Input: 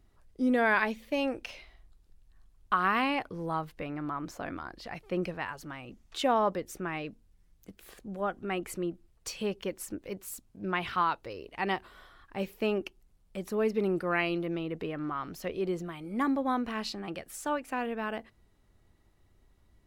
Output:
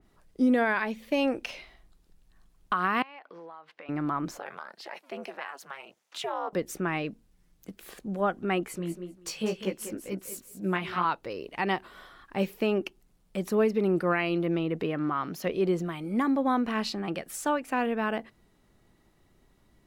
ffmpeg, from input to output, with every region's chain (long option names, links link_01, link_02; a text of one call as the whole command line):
ffmpeg -i in.wav -filter_complex "[0:a]asettb=1/sr,asplit=3[link_01][link_02][link_03];[link_01]atrim=end=3.024[link_04];[link_02]atrim=start=3.02:end=3.89,asetpts=PTS-STARTPTS,afade=type=in:duration=0.004:curve=qsin,afade=type=out:start_time=0.866:duration=0.004:curve=qsin,highpass=650,lowpass=3300,acompressor=threshold=-47dB:ratio=8:attack=3.2:release=140:knee=1:detection=peak[link_05];[link_03]atrim=start=3.886[link_06];[link_04][link_05]acrossfade=duration=0.004:curve1=hsin:curve2=qsin[link_07];[link_07][link_06]acrossfade=duration=0.004:curve1=qsin:curve2=hsin,asettb=1/sr,asplit=3[link_08][link_09][link_10];[link_08]atrim=end=4.394[link_11];[link_09]atrim=start=4.39:end=6.53,asetpts=PTS-STARTPTS,afade=type=in:duration=0.004:curve=qsin,afade=type=out:start_time=2.136:duration=0.004:curve=qsin,highpass=frequency=490:width=0.5412,highpass=frequency=490:width=1.3066,acompressor=threshold=-37dB:ratio=2:attack=3.2:release=140:knee=1:detection=peak,aeval=exprs='val(0)*sin(2*PI*140*n/s)':channel_layout=same[link_12];[link_10]atrim=start=6.526[link_13];[link_11][link_12]acrossfade=duration=0.004:curve1=hsin:curve2=qsin[link_14];[link_14][link_13]acrossfade=duration=0.004:curve1=qsin:curve2=hsin,asettb=1/sr,asplit=3[link_15][link_16][link_17];[link_15]atrim=end=8.654[link_18];[link_16]atrim=start=8.65:end=11.05,asetpts=PTS-STARTPTS,afade=type=in:duration=0.004:curve=qsin,afade=type=out:start_time=2.396:duration=0.004:curve=qsin,aecho=1:1:196|392:0.316|0.0474,atrim=end_sample=105840,flanger=delay=15.5:depth=3.1:speed=2[link_19];[link_17]atrim=start=11.046[link_20];[link_18][link_19]acrossfade=duration=0.004:curve1=hsin:curve2=qsin[link_21];[link_21][link_20]acrossfade=duration=0.004:curve1=qsin:curve2=hsin,asettb=1/sr,asplit=3[link_22][link_23][link_24];[link_22]atrim=end=14.834[link_25];[link_23]atrim=start=14.83:end=15.47,asetpts=PTS-STARTPTS,afade=type=in:duration=0.004:curve=qsin,afade=type=out:start_time=0.636:duration=0.004:curve=qsin,highpass=74,bandreject=frequency=8000:width=7.3[link_26];[link_24]atrim=start=15.466[link_27];[link_25][link_26]acrossfade=duration=0.004:curve1=hsin:curve2=qsin[link_28];[link_28][link_27]acrossfade=duration=0.004:curve1=qsin:curve2=hsin,lowshelf=frequency=120:width_type=q:width=1.5:gain=-6.5,alimiter=limit=-21dB:level=0:latency=1:release=278,adynamicequalizer=threshold=0.00501:dfrequency=3000:dqfactor=0.7:tfrequency=3000:tqfactor=0.7:attack=5:release=100:ratio=0.375:range=1.5:mode=cutabove:tftype=highshelf,volume=5dB" out.wav